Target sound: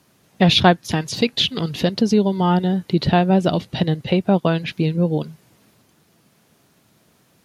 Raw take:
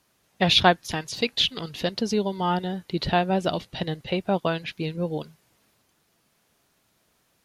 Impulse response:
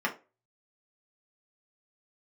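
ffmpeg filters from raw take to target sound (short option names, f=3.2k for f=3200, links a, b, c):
-filter_complex "[0:a]highpass=120,lowshelf=f=310:g=12,asplit=2[a][b];[b]acompressor=threshold=-28dB:ratio=6,volume=1.5dB[c];[a][c]amix=inputs=2:normalize=0"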